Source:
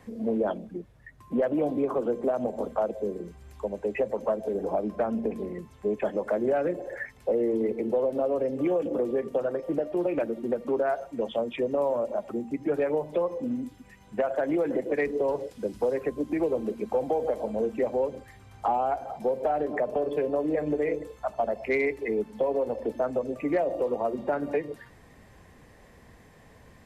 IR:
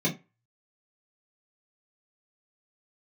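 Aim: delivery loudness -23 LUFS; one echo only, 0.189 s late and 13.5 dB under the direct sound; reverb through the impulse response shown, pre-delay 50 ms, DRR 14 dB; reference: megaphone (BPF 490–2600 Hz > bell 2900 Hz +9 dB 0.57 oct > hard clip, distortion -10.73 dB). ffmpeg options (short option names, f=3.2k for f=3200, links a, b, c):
-filter_complex "[0:a]aecho=1:1:189:0.211,asplit=2[a][b];[1:a]atrim=start_sample=2205,adelay=50[c];[b][c]afir=irnorm=-1:irlink=0,volume=-23.5dB[d];[a][d]amix=inputs=2:normalize=0,highpass=490,lowpass=2.6k,equalizer=f=2.9k:t=o:w=0.57:g=9,asoftclip=type=hard:threshold=-27.5dB,volume=10.5dB"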